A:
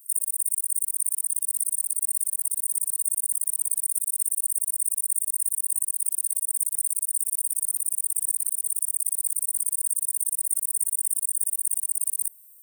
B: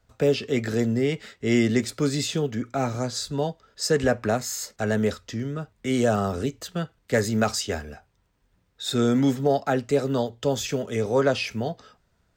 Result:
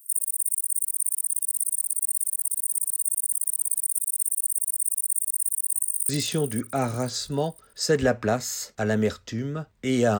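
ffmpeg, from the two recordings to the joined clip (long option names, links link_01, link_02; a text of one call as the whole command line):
ffmpeg -i cue0.wav -i cue1.wav -filter_complex "[0:a]apad=whole_dur=10.19,atrim=end=10.19,atrim=end=6.092[link_01];[1:a]atrim=start=2.098:end=6.2[link_02];[link_01][link_02]acrossfade=duration=0.004:curve1=hsin:curve2=hsin,asplit=2[link_03][link_04];[link_04]afade=type=in:start_time=5.33:duration=0.01,afade=type=out:start_time=6.09:duration=0.01,aecho=0:1:500|1000|1500|2000:0.281838|0.112735|0.0450941|0.0180377[link_05];[link_03][link_05]amix=inputs=2:normalize=0" out.wav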